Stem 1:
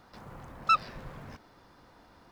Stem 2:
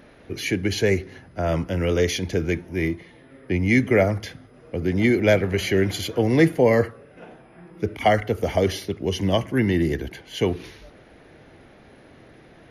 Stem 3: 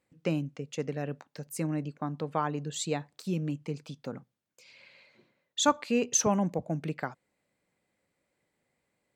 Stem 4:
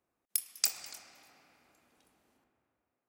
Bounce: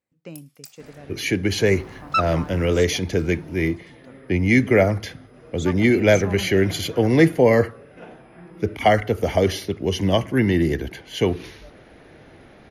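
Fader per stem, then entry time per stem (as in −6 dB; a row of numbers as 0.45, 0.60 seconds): +3.0, +2.0, −9.0, −13.5 decibels; 1.45, 0.80, 0.00, 0.00 seconds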